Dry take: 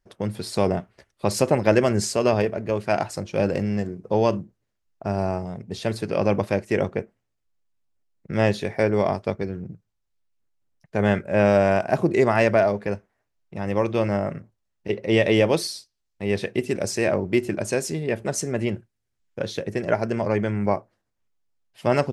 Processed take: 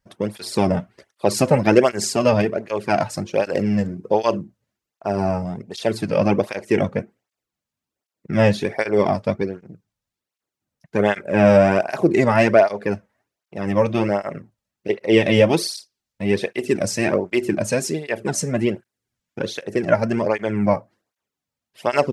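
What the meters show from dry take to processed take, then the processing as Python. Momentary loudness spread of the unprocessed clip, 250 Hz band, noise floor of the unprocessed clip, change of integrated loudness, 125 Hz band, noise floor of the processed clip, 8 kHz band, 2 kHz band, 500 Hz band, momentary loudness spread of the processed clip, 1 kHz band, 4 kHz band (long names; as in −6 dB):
12 LU, +4.0 dB, −77 dBFS, +3.5 dB, +2.0 dB, below −85 dBFS, +3.5 dB, +3.0 dB, +3.0 dB, 13 LU, +3.5 dB, +3.5 dB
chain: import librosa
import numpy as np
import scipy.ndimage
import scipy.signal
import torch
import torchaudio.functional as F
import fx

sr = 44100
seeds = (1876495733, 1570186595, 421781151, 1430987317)

y = fx.flanger_cancel(x, sr, hz=1.3, depth_ms=3.0)
y = F.gain(torch.from_numpy(y), 6.5).numpy()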